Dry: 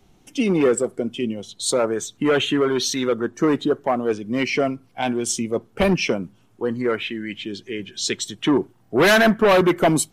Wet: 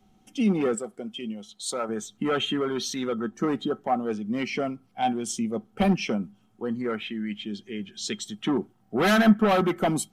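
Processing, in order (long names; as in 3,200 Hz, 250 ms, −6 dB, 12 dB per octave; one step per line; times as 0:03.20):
0:00.75–0:01.89: low-shelf EQ 360 Hz −10.5 dB
hollow resonant body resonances 210/760/1,300/3,200 Hz, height 12 dB, ringing for 95 ms
level −8.5 dB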